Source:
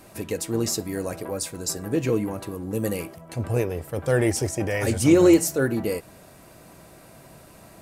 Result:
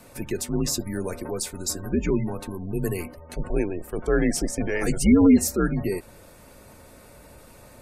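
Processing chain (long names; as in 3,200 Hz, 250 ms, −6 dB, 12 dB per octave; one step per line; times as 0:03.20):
gate on every frequency bin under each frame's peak −30 dB strong
frequency shifter −85 Hz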